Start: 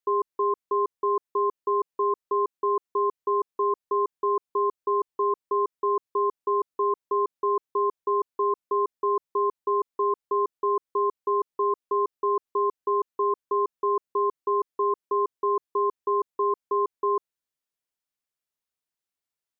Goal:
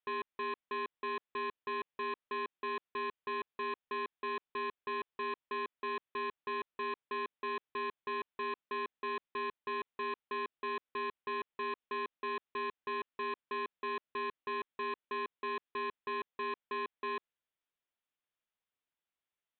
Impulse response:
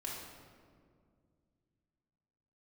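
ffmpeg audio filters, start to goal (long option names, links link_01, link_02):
-af "lowshelf=frequency=410:gain=-3.5,aresample=8000,asoftclip=type=tanh:threshold=-35dB,aresample=44100"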